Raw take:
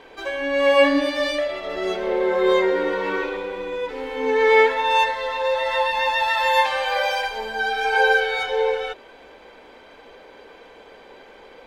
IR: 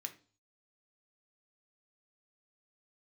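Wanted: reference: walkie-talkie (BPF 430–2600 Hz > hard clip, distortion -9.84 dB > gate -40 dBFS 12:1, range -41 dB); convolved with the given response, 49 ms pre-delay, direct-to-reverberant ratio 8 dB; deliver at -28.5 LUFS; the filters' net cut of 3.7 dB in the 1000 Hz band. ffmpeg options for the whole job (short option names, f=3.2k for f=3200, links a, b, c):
-filter_complex "[0:a]equalizer=f=1k:t=o:g=-4,asplit=2[a][b];[1:a]atrim=start_sample=2205,adelay=49[c];[b][c]afir=irnorm=-1:irlink=0,volume=-5dB[d];[a][d]amix=inputs=2:normalize=0,highpass=430,lowpass=2.6k,asoftclip=type=hard:threshold=-20.5dB,agate=range=-41dB:threshold=-40dB:ratio=12,volume=-3dB"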